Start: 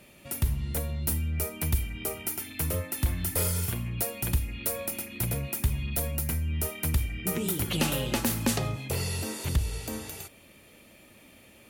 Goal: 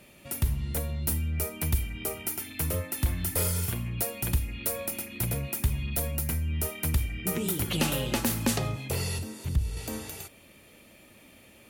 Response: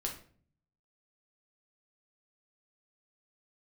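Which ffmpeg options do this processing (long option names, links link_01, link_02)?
-filter_complex "[0:a]asettb=1/sr,asplit=3[link_01][link_02][link_03];[link_01]atrim=end=9.184[link_04];[link_02]atrim=start=9.18:end=9.77,asetpts=PTS-STARTPTS,afade=type=in:duration=0.004:curve=qsin,afade=type=out:start_time=0.586:duration=0.004:curve=qsin,acrossover=split=270[link_05][link_06];[link_06]acompressor=threshold=-46dB:ratio=3[link_07];[link_05][link_07]amix=inputs=2:normalize=0[link_08];[link_03]atrim=start=9.766[link_09];[link_04][link_08]acrossfade=duration=0.004:curve1=hsin:curve2=qsin[link_10];[link_10][link_09]acrossfade=duration=0.004:curve1=qsin:curve2=hsin"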